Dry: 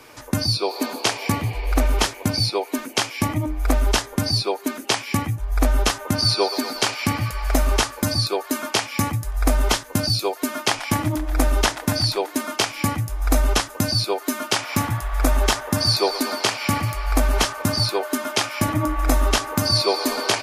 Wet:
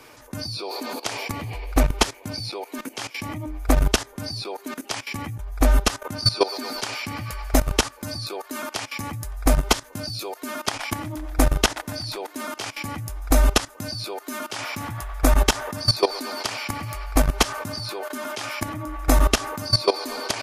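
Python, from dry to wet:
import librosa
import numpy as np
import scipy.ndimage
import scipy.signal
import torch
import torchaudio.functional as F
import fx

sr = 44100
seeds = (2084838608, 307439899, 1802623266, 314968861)

y = fx.level_steps(x, sr, step_db=17)
y = y * 10.0 ** (3.0 / 20.0)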